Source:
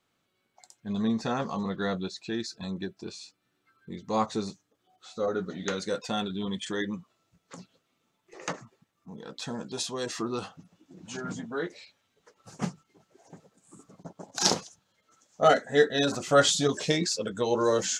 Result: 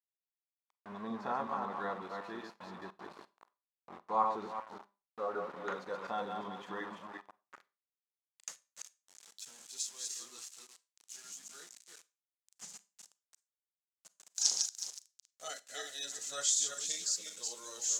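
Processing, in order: regenerating reverse delay 0.184 s, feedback 43%, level -4 dB; low shelf 380 Hz +4.5 dB; sample gate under -35 dBFS; band-pass sweep 1000 Hz -> 7200 Hz, 7.44–8.12; Schroeder reverb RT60 0.3 s, combs from 31 ms, DRR 18 dB

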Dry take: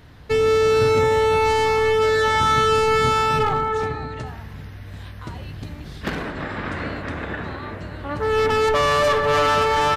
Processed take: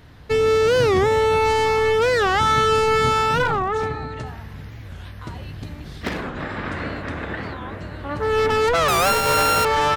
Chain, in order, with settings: 8.9–9.65 sample sorter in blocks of 32 samples; record warp 45 rpm, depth 250 cents

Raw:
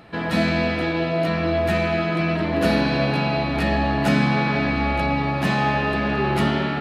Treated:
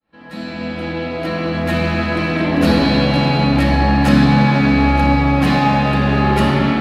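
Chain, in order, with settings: opening faded in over 2.11 s; in parallel at -7 dB: hard clip -22 dBFS, distortion -8 dB; on the sum: shoebox room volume 3500 m³, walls mixed, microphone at 2.2 m; gain +1 dB

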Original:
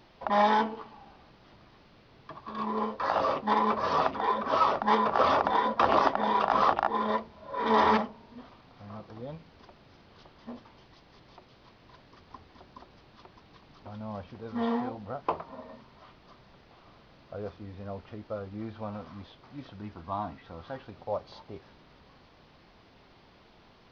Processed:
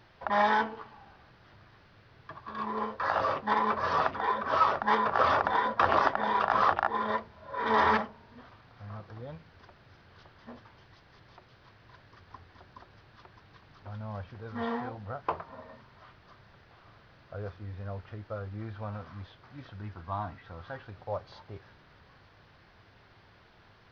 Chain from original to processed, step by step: fifteen-band EQ 100 Hz +9 dB, 250 Hz -4 dB, 1600 Hz +8 dB; gain -3 dB

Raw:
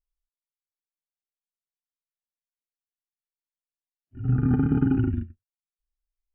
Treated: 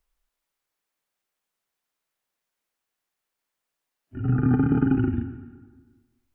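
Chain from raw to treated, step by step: low shelf 200 Hz -8.5 dB; plate-style reverb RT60 1.1 s, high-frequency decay 0.75×, pre-delay 0.105 s, DRR 14 dB; three-band squash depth 40%; gain +5 dB

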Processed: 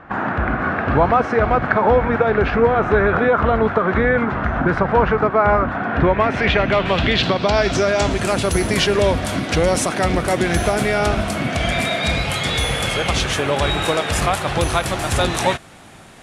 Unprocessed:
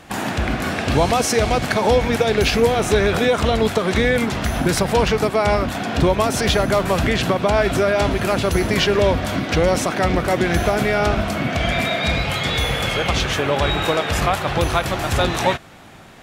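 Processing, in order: low-pass sweep 1400 Hz -> 10000 Hz, 5.83–8.46

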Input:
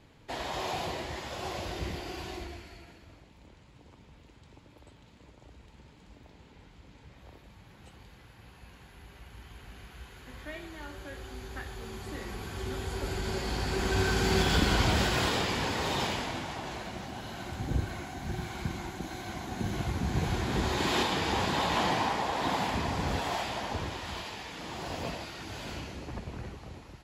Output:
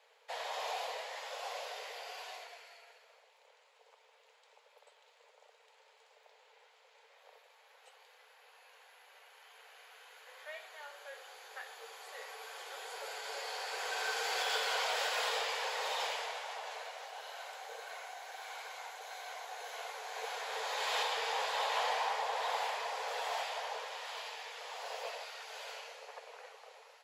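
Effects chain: Chebyshev high-pass 440 Hz, order 8; in parallel at -11 dB: soft clip -34.5 dBFS, distortion -8 dB; on the sum: gain -5 dB

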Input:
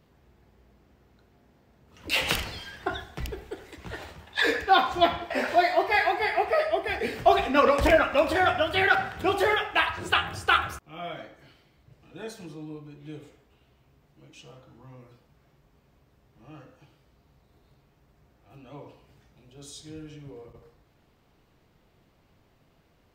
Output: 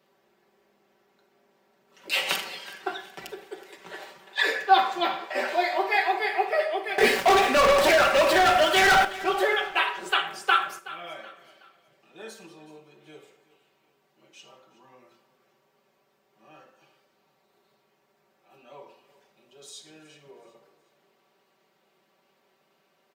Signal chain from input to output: HPF 370 Hz 12 dB/oct; comb 5.2 ms, depth 74%; 6.98–9.05 sample leveller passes 5; vocal rider within 4 dB 0.5 s; feedback echo 0.373 s, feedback 38%, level -18 dB; Schroeder reverb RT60 0.32 s, combs from 33 ms, DRR 13 dB; gain -6 dB

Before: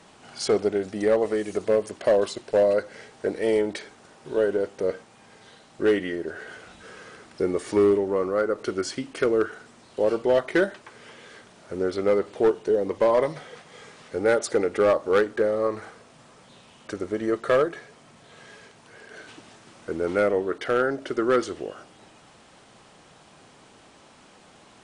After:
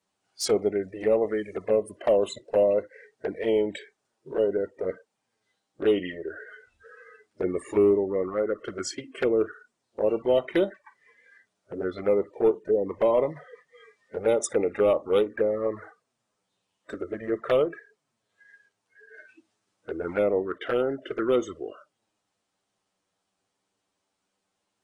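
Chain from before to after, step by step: spectral noise reduction 25 dB; envelope flanger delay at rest 10.4 ms, full sweep at -18.5 dBFS; tone controls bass -2 dB, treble +6 dB

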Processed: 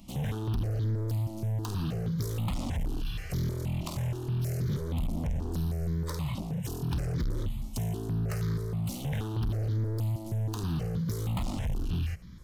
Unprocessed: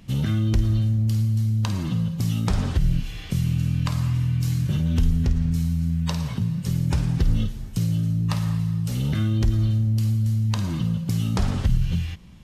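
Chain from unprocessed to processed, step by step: hard clip -26.5 dBFS, distortion -7 dB; high shelf 10000 Hz +4 dB; step phaser 6.3 Hz 440–2700 Hz

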